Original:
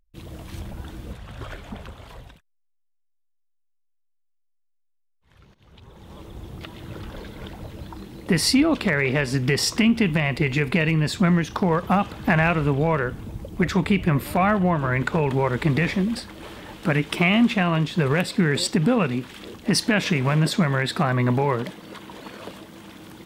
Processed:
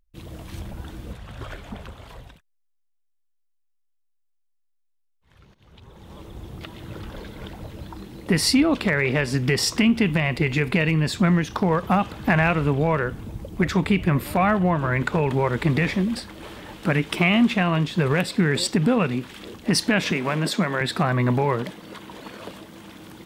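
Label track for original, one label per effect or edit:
20.110000	20.810000	high-pass 180 Hz 24 dB/octave

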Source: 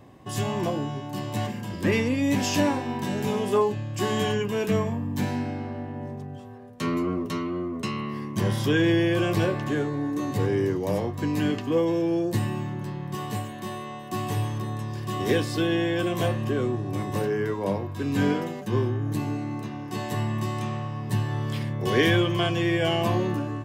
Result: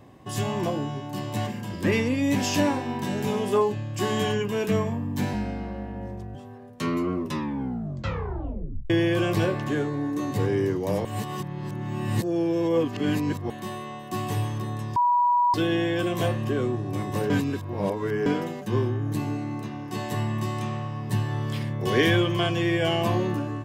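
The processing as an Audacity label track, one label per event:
5.330000	6.350000	frequency shift -35 Hz
7.200000	7.200000	tape stop 1.70 s
11.050000	13.500000	reverse
14.960000	15.540000	bleep 971 Hz -17.5 dBFS
17.300000	18.260000	reverse
21.720000	22.580000	short-mantissa float mantissa of 8-bit

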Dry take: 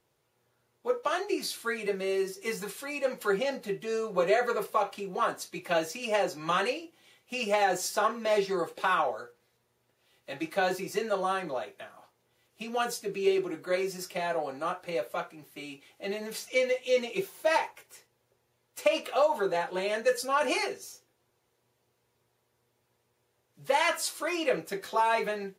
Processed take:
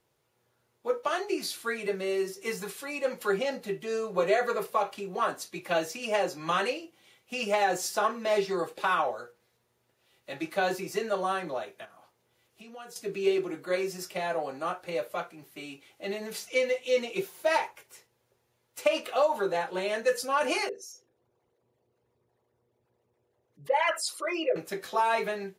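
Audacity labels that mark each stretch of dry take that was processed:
11.850000	12.960000	compression 2:1, threshold -54 dBFS
20.690000	24.560000	resonances exaggerated exponent 2

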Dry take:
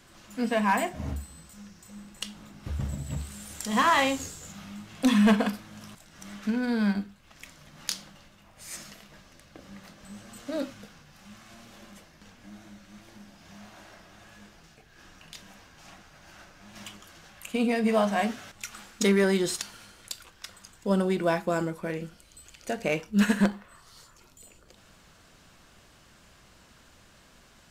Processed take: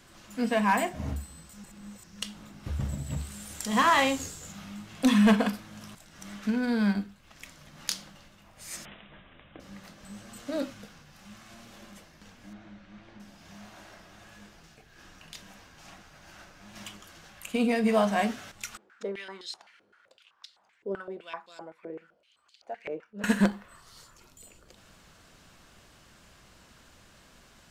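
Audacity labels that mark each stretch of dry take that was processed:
1.640000	2.220000	reverse
8.850000	9.600000	careless resampling rate divided by 6×, down none, up filtered
12.530000	13.200000	low-pass 3.2 kHz
18.770000	23.240000	step-sequenced band-pass 7.8 Hz 400–4100 Hz

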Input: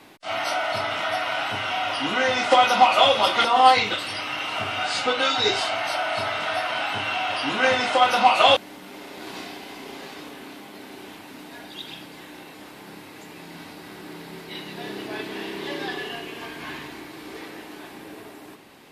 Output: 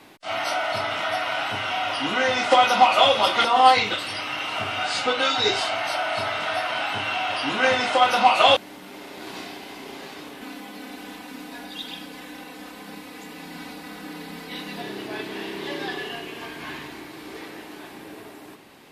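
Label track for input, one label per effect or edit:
10.410000	14.820000	comb 4 ms, depth 89%

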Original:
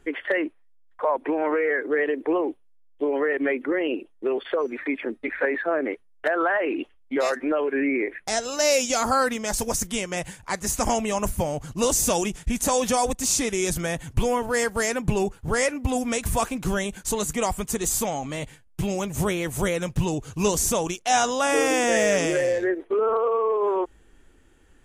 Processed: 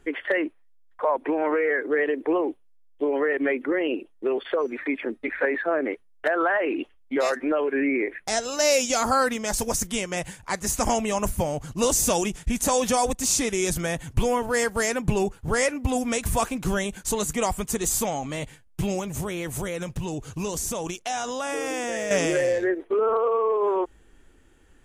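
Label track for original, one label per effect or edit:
18.990000	22.110000	compression 4:1, threshold -26 dBFS

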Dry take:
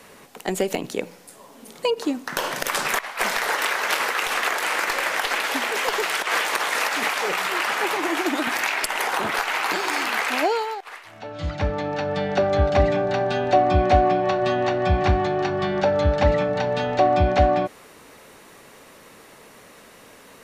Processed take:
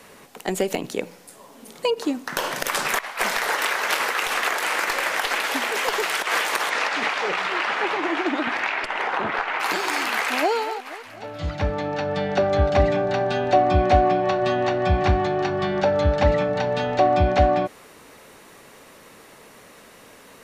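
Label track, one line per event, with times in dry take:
6.690000	9.590000	low-pass 5.4 kHz -> 2.3 kHz
10.130000	10.540000	echo throw 240 ms, feedback 60%, level -14 dB

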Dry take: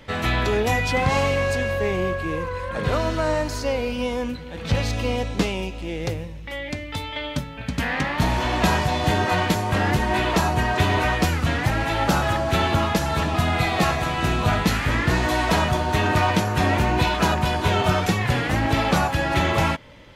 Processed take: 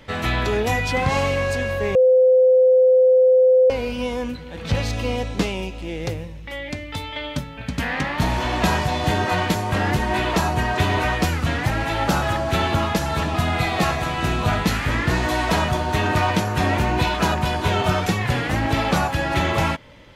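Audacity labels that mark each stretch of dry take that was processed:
1.950000	3.700000	bleep 513 Hz -10.5 dBFS

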